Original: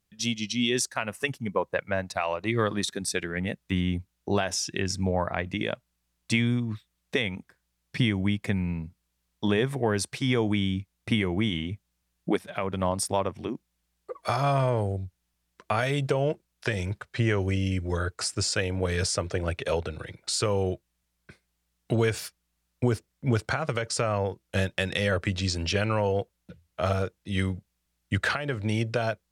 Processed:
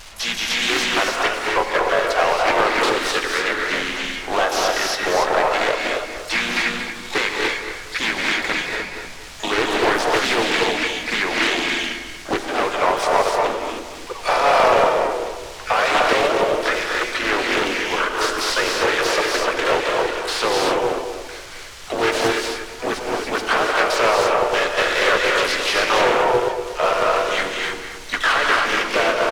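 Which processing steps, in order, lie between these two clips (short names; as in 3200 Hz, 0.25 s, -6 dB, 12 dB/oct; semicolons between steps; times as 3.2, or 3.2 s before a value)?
delta modulation 64 kbps, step -41.5 dBFS; HPF 280 Hz 24 dB/oct; three-band isolator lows -15 dB, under 580 Hz, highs -13 dB, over 7200 Hz; notches 50/100/150/200/250/300/350/400 Hz; sample leveller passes 1; added noise brown -56 dBFS; on a send: analogue delay 0.235 s, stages 4096, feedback 31%, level -8.5 dB; on the sum: non-linear reverb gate 0.32 s rising, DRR 0 dB; harmoniser -5 st -6 dB, -3 st -9 dB, +12 st -11 dB; Doppler distortion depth 0.42 ms; gain +8 dB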